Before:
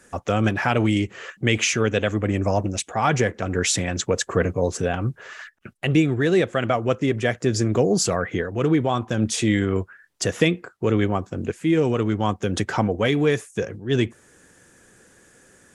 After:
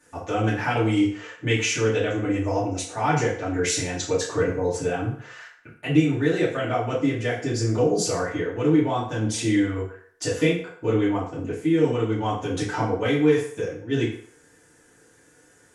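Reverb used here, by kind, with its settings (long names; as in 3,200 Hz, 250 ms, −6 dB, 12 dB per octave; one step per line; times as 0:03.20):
feedback delay network reverb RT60 0.58 s, low-frequency decay 0.7×, high-frequency decay 0.8×, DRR −8.5 dB
level −11.5 dB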